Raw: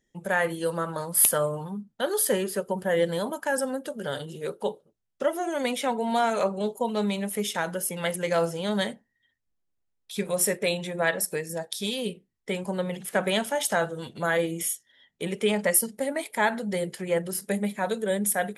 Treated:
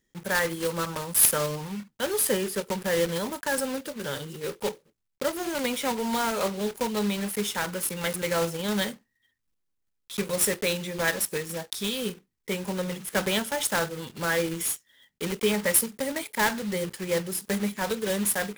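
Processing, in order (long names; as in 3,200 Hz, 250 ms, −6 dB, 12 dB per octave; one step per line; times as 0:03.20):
one scale factor per block 3 bits
parametric band 660 Hz −5.5 dB 0.48 octaves
notch filter 700 Hz, Q 23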